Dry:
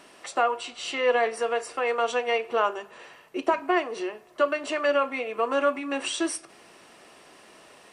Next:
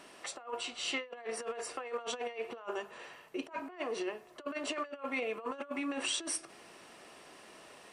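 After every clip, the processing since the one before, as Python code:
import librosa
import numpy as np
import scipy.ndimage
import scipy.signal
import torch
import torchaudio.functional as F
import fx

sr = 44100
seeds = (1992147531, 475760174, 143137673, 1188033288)

y = fx.over_compress(x, sr, threshold_db=-30.0, ratio=-0.5)
y = F.gain(torch.from_numpy(y), -7.5).numpy()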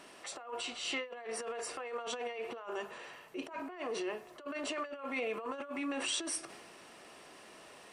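y = fx.transient(x, sr, attack_db=-5, sustain_db=4)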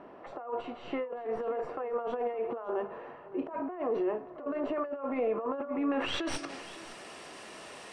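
y = fx.tracing_dist(x, sr, depth_ms=0.032)
y = fx.filter_sweep_lowpass(y, sr, from_hz=910.0, to_hz=9300.0, start_s=5.8, end_s=6.69, q=0.83)
y = y + 10.0 ** (-17.5 / 20.0) * np.pad(y, (int(567 * sr / 1000.0), 0))[:len(y)]
y = F.gain(torch.from_numpy(y), 7.5).numpy()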